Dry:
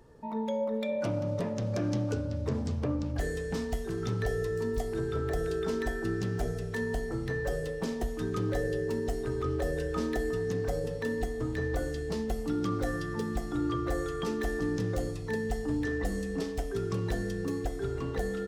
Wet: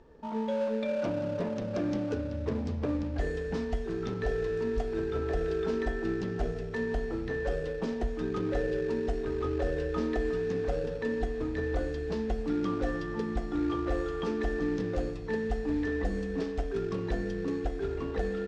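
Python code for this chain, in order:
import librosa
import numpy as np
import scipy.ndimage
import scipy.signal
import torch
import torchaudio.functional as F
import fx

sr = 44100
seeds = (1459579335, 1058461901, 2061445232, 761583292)

p1 = fx.peak_eq(x, sr, hz=120.0, db=-12.5, octaves=0.6)
p2 = fx.sample_hold(p1, sr, seeds[0], rate_hz=2100.0, jitter_pct=20)
p3 = p1 + (p2 * librosa.db_to_amplitude(-10.5))
y = fx.air_absorb(p3, sr, metres=130.0)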